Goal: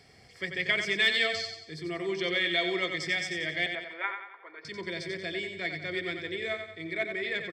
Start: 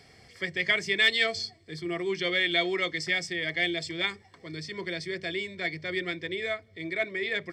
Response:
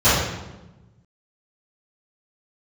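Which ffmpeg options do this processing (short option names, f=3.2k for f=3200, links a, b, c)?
-filter_complex "[0:a]asettb=1/sr,asplit=3[a][b][c];[a]atrim=end=3.664[d];[b]atrim=start=3.66:end=4.65,asetpts=PTS-STARTPTS,afade=t=in:d=0.004:c=qsin,afade=t=out:st=0.986:d=0.004:c=qsin,highpass=f=470:w=0.5412,highpass=f=470:w=1.3066,equalizer=f=600:t=q:w=4:g=-4,equalizer=f=910:t=q:w=4:g=9,equalizer=f=1.4k:t=q:w=4:g=8,lowpass=f=2.2k:w=0.5412,lowpass=f=2.2k:w=1.3066[e];[c]atrim=start=4.646[f];[d][e]acrossfade=d=0.004:c1=hsin:c2=qsin[g];[g][f]acrossfade=d=0.004:c1=qsin:c2=hsin,aecho=1:1:91|182|273|364|455:0.447|0.205|0.0945|0.0435|0.02,volume=-2.5dB"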